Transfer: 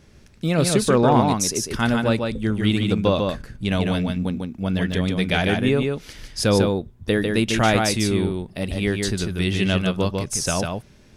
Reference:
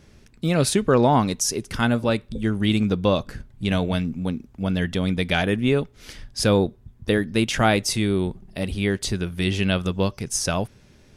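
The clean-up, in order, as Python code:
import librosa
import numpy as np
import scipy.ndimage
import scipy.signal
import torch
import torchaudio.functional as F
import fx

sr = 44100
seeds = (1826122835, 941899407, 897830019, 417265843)

y = fx.fix_declip(x, sr, threshold_db=-6.0)
y = fx.fix_interpolate(y, sr, at_s=(4.92,), length_ms=3.8)
y = fx.fix_echo_inverse(y, sr, delay_ms=148, level_db=-4.0)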